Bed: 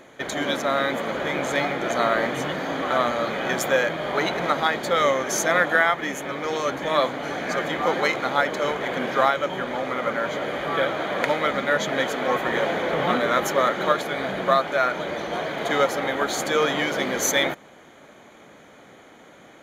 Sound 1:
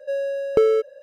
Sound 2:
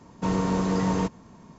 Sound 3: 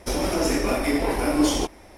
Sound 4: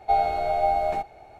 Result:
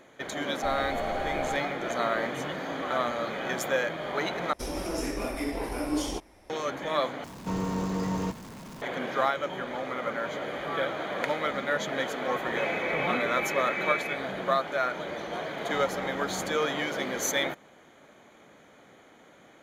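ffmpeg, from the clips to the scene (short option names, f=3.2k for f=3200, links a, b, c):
-filter_complex "[3:a]asplit=2[a][b];[2:a]asplit=2[c][d];[0:a]volume=-6.5dB[e];[4:a]acrossover=split=130|3000[f][g][h];[g]acompressor=threshold=-29dB:ratio=6:attack=3.2:release=140:knee=2.83:detection=peak[i];[f][i][h]amix=inputs=3:normalize=0[j];[c]aeval=exprs='val(0)+0.5*0.0224*sgn(val(0))':c=same[k];[b]lowpass=f=2.2k:t=q:w=0.5098,lowpass=f=2.2k:t=q:w=0.6013,lowpass=f=2.2k:t=q:w=0.9,lowpass=f=2.2k:t=q:w=2.563,afreqshift=-2600[l];[e]asplit=3[m][n][o];[m]atrim=end=4.534[p];[a]atrim=end=1.97,asetpts=PTS-STARTPTS,volume=-9dB[q];[n]atrim=start=6.496:end=7.244[r];[k]atrim=end=1.58,asetpts=PTS-STARTPTS,volume=-6.5dB[s];[o]atrim=start=8.816[t];[j]atrim=end=1.39,asetpts=PTS-STARTPTS,volume=-2dB,afade=t=in:d=0.004:c=hsin,afade=t=out:st=1.386:d=0.004:c=hsin,adelay=540[u];[l]atrim=end=1.97,asetpts=PTS-STARTPTS,volume=-11.5dB,afade=t=in:d=0.004:c=hsin,afade=t=out:st=1.966:d=0.004:c=hsin,adelay=12490[v];[d]atrim=end=1.58,asetpts=PTS-STARTPTS,volume=-17dB,afade=t=in:d=0.004:c=hsin,afade=t=out:st=1.576:d=0.004:c=hsin,adelay=15480[w];[p][q]acrossfade=d=0.004:c1=hsin:c2=hsin[x];[x][r]acrossfade=d=0.004:c1=hsin:c2=hsin[y];[y][s]acrossfade=d=0.004:c1=hsin:c2=hsin[z];[z][t]acrossfade=d=0.004:c1=hsin:c2=hsin[aa];[aa][u][v][w]amix=inputs=4:normalize=0"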